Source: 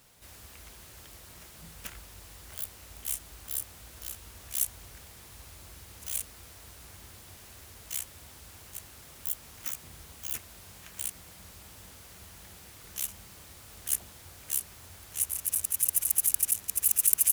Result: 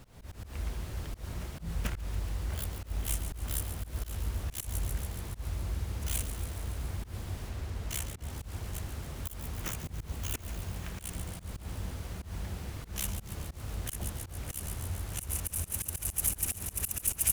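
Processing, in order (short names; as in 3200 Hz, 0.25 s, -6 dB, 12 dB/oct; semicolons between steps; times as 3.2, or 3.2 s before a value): tilt -3 dB/oct; on a send: thin delay 0.14 s, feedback 72%, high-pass 1900 Hz, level -11 dB; on the sum: auto swell 0.124 s; 7.49–8.3 backlash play -59 dBFS; gain +7 dB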